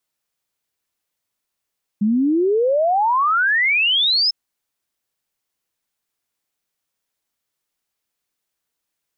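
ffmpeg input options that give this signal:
ffmpeg -f lavfi -i "aevalsrc='0.2*clip(min(t,2.3-t)/0.01,0,1)*sin(2*PI*200*2.3/log(5300/200)*(exp(log(5300/200)*t/2.3)-1))':duration=2.3:sample_rate=44100" out.wav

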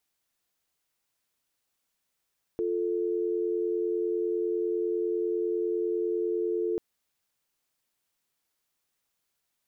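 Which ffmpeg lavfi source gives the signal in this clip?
ffmpeg -f lavfi -i "aevalsrc='0.0376*(sin(2*PI*350*t)+sin(2*PI*440*t))':duration=4.19:sample_rate=44100" out.wav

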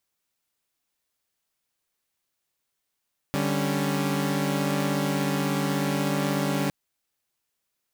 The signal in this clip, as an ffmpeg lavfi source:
ffmpeg -f lavfi -i "aevalsrc='0.0531*((2*mod(146.83*t,1)-1)+(2*mod(196*t,1)-1)+(2*mod(277.18*t,1)-1))':duration=3.36:sample_rate=44100" out.wav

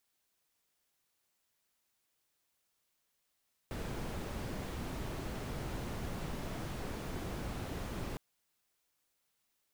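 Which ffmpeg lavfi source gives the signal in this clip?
ffmpeg -f lavfi -i "anoisesrc=color=brown:amplitude=0.0495:duration=4.46:sample_rate=44100:seed=1" out.wav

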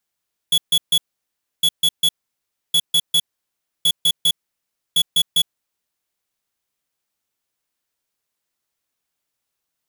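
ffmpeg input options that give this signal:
ffmpeg -f lavfi -i "aevalsrc='0.178*(2*lt(mod(3380*t,1),0.5)-1)*clip(min(mod(mod(t,1.11),0.2),0.06-mod(mod(t,1.11),0.2))/0.005,0,1)*lt(mod(t,1.11),0.6)':duration=5.55:sample_rate=44100" out.wav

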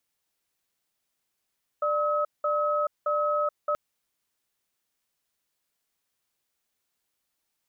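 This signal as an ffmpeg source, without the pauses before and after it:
ffmpeg -f lavfi -i "aevalsrc='0.0531*(sin(2*PI*594*t)+sin(2*PI*1280*t))*clip(min(mod(t,0.62),0.43-mod(t,0.62))/0.005,0,1)':duration=1.93:sample_rate=44100" out.wav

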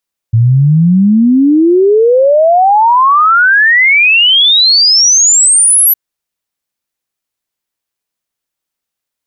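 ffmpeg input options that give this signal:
ffmpeg -f lavfi -i "aevalsrc='0.631*clip(min(t,5.61-t)/0.01,0,1)*sin(2*PI*110*5.61/log(12000/110)*(exp(log(12000/110)*t/5.61)-1))':duration=5.61:sample_rate=44100" out.wav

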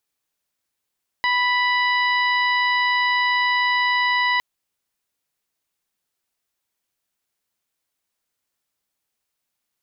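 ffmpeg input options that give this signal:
ffmpeg -f lavfi -i "aevalsrc='0.0891*sin(2*PI*987*t)+0.106*sin(2*PI*1974*t)+0.0355*sin(2*PI*2961*t)+0.0316*sin(2*PI*3948*t)+0.0178*sin(2*PI*4935*t)':duration=3.16:sample_rate=44100" out.wav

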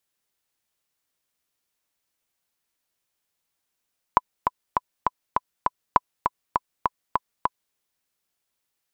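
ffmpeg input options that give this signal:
ffmpeg -f lavfi -i "aevalsrc='pow(10,(-1.5-5.5*gte(mod(t,6*60/201),60/201))/20)*sin(2*PI*1000*mod(t,60/201))*exp(-6.91*mod(t,60/201)/0.03)':duration=3.58:sample_rate=44100" out.wav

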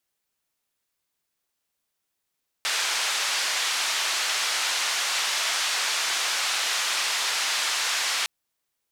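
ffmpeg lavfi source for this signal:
ffmpeg -f lavfi -i "anoisesrc=color=white:duration=5.61:sample_rate=44100:seed=1,highpass=frequency=920,lowpass=frequency=5600,volume=-14.7dB" out.wav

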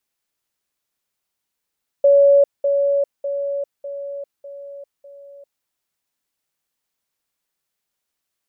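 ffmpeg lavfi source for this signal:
ffmpeg -f lavfi -i "aevalsrc='pow(10,(-8.5-6*floor(t/0.6))/20)*sin(2*PI*563*t)*clip(min(mod(t,0.6),0.4-mod(t,0.6))/0.005,0,1)':duration=3.6:sample_rate=44100" out.wav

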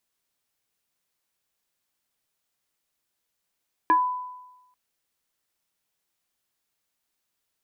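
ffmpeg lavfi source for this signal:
ffmpeg -f lavfi -i "aevalsrc='0.2*pow(10,-3*t/1.04)*sin(2*PI*999*t+0.76*pow(10,-3*t/0.19)*sin(2*PI*0.68*999*t))':duration=0.84:sample_rate=44100" out.wav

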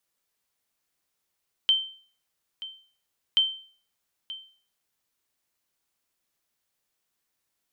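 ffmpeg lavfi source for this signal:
ffmpeg -f lavfi -i "aevalsrc='0.2*(sin(2*PI*3110*mod(t,1.68))*exp(-6.91*mod(t,1.68)/0.45)+0.15*sin(2*PI*3110*max(mod(t,1.68)-0.93,0))*exp(-6.91*max(mod(t,1.68)-0.93,0)/0.45))':duration=3.36:sample_rate=44100" out.wav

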